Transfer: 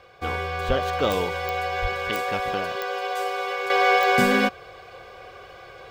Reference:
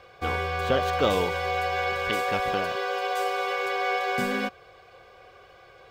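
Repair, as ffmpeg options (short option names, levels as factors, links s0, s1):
-filter_complex "[0:a]adeclick=t=4,asplit=3[s0][s1][s2];[s0]afade=t=out:st=0.67:d=0.02[s3];[s1]highpass=f=140:w=0.5412,highpass=f=140:w=1.3066,afade=t=in:st=0.67:d=0.02,afade=t=out:st=0.79:d=0.02[s4];[s2]afade=t=in:st=0.79:d=0.02[s5];[s3][s4][s5]amix=inputs=3:normalize=0,asplit=3[s6][s7][s8];[s6]afade=t=out:st=1.81:d=0.02[s9];[s7]highpass=f=140:w=0.5412,highpass=f=140:w=1.3066,afade=t=in:st=1.81:d=0.02,afade=t=out:st=1.93:d=0.02[s10];[s8]afade=t=in:st=1.93:d=0.02[s11];[s9][s10][s11]amix=inputs=3:normalize=0,asetnsamples=n=441:p=0,asendcmd='3.7 volume volume -8dB',volume=1"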